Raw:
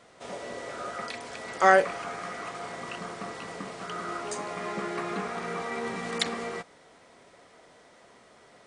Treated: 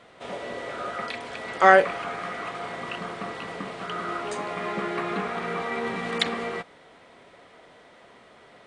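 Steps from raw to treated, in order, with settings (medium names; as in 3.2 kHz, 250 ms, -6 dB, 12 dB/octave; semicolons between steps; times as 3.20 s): resonant high shelf 4.4 kHz -6.5 dB, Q 1.5; trim +3.5 dB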